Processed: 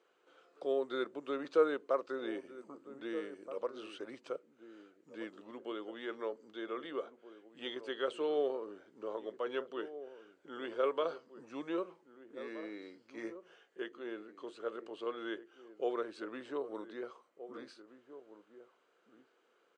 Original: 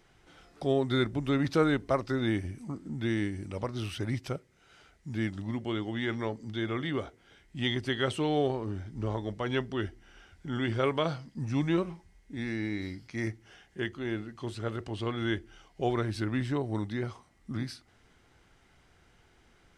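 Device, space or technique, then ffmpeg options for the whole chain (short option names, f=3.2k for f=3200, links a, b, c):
phone speaker on a table: -filter_complex "[0:a]bass=f=250:g=8,treble=f=4k:g=-4,highpass=f=380:w=0.5412,highpass=f=380:w=1.3066,equalizer=f=490:t=q:w=4:g=8,equalizer=f=790:t=q:w=4:g=-6,equalizer=f=1.2k:t=q:w=4:g=4,equalizer=f=2k:t=q:w=4:g=-9,equalizer=f=3.6k:t=q:w=4:g=-3,equalizer=f=5.4k:t=q:w=4:g=-9,lowpass=f=7.8k:w=0.5412,lowpass=f=7.8k:w=1.3066,asettb=1/sr,asplit=3[a][b][c];[a]atrim=end=13.154[d];[b]atrim=start=13.15:end=13.82,asetpts=PTS-STARTPTS,afade=t=in:d=0.004:c=qsin,afade=t=out:st=0.666:d=0.004:c=qsin,asplit=2[e][f];[f]adelay=18,volume=-5dB[g];[e][g]amix=inputs=2:normalize=0,atrim=end_sample=29547[h];[c]atrim=start=13.816[i];[d][h]acrossfade=d=0.004:c1=hsin:c2=qsin[j];[j][i]acrossfade=d=0.004:c1=qsin:c2=hsin,asplit=2[k][l];[l]adelay=1574,volume=-13dB,highshelf=f=4k:g=-35.4[m];[k][m]amix=inputs=2:normalize=0,volume=-6.5dB"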